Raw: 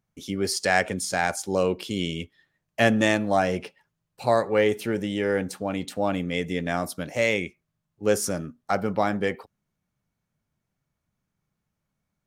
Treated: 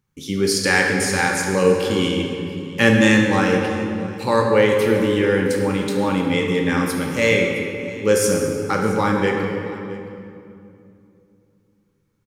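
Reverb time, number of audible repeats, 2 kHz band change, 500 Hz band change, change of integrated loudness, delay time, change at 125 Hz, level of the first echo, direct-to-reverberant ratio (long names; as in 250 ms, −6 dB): 2.7 s, 1, +8.0 dB, +6.5 dB, +6.5 dB, 668 ms, +9.0 dB, −19.0 dB, 0.5 dB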